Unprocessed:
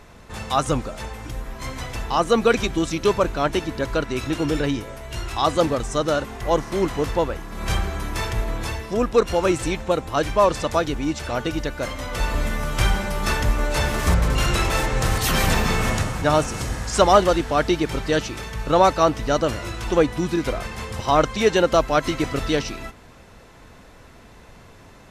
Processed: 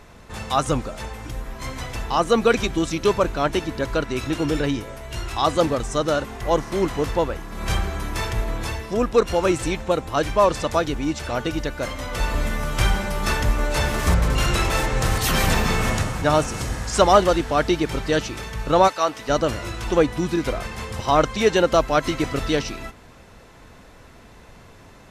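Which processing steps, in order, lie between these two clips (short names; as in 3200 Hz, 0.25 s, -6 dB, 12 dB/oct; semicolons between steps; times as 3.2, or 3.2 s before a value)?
18.87–19.28 HPF 1400 Hz -> 520 Hz 6 dB/oct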